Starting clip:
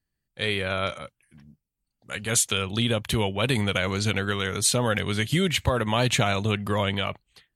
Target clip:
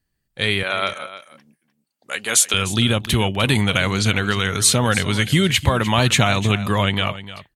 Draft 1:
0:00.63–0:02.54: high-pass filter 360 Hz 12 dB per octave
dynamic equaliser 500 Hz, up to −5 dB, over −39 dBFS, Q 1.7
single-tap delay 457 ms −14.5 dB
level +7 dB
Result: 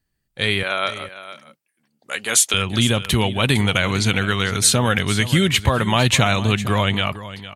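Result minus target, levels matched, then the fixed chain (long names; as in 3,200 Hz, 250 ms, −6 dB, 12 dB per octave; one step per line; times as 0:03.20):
echo 155 ms late
0:00.63–0:02.54: high-pass filter 360 Hz 12 dB per octave
dynamic equaliser 500 Hz, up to −5 dB, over −39 dBFS, Q 1.7
single-tap delay 302 ms −14.5 dB
level +7 dB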